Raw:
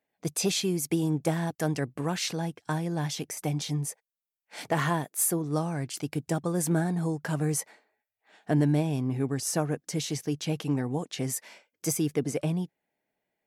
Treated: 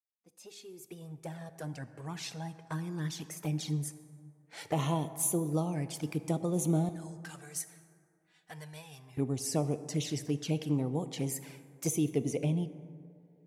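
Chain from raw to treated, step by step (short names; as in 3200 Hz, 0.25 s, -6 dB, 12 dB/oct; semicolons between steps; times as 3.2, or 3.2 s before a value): opening faded in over 4.12 s; 6.9–9.19 passive tone stack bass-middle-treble 10-0-10; envelope flanger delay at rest 4.4 ms, full sweep at -26 dBFS; vibrato 0.38 Hz 65 cents; plate-style reverb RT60 2.3 s, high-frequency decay 0.4×, DRR 11.5 dB; gain -2 dB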